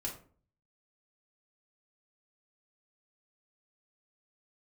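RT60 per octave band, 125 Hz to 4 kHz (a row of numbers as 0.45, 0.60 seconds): 0.70, 0.55, 0.50, 0.40, 0.35, 0.25 seconds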